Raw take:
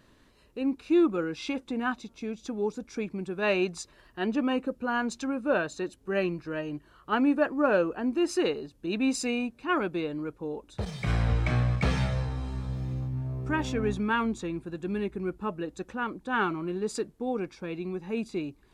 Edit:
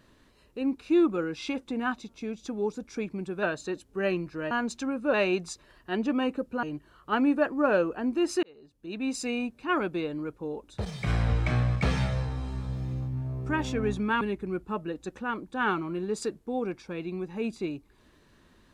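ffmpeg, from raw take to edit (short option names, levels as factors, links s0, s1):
-filter_complex "[0:a]asplit=7[s0][s1][s2][s3][s4][s5][s6];[s0]atrim=end=3.432[s7];[s1]atrim=start=5.548:end=6.632[s8];[s2]atrim=start=4.918:end=5.552[s9];[s3]atrim=start=3.428:end=4.922[s10];[s4]atrim=start=6.628:end=8.43,asetpts=PTS-STARTPTS,afade=t=out:st=1.798:d=0.004:c=hsin[s11];[s5]atrim=start=8.43:end=14.212,asetpts=PTS-STARTPTS,afade=t=in:d=1.05[s12];[s6]atrim=start=14.938[s13];[s7][s8]acrossfade=d=0.004:c1=hsin:c2=hsin[s14];[s14][s9]acrossfade=d=0.004:c1=hsin:c2=hsin[s15];[s15][s10]acrossfade=d=0.004:c1=hsin:c2=hsin[s16];[s11][s12]concat=n=2:v=0:a=1[s17];[s16][s17]acrossfade=d=0.004:c1=hsin:c2=hsin[s18];[s18][s13]acrossfade=d=0.004:c1=hsin:c2=hsin"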